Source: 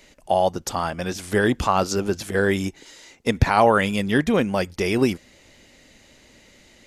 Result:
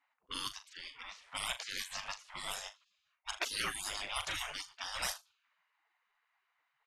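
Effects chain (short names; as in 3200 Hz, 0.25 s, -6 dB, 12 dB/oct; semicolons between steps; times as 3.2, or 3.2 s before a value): low-pass opened by the level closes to 420 Hz, open at -14.5 dBFS; flutter echo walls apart 6.8 m, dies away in 0.22 s; spectral gate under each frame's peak -30 dB weak; gain +3 dB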